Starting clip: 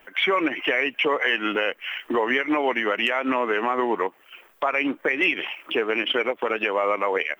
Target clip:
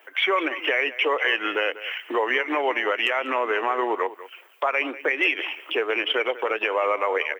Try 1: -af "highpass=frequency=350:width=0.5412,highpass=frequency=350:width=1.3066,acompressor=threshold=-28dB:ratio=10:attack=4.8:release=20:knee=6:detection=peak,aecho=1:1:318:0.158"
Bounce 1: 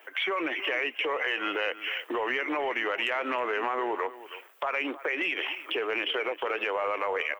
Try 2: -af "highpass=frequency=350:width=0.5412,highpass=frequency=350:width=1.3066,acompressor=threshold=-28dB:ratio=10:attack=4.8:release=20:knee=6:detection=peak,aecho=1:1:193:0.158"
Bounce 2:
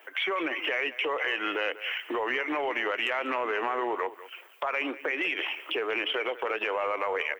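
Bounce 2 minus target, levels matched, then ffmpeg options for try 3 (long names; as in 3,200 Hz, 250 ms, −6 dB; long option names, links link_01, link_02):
downward compressor: peak gain reduction +10 dB
-af "highpass=frequency=350:width=0.5412,highpass=frequency=350:width=1.3066,aecho=1:1:193:0.158"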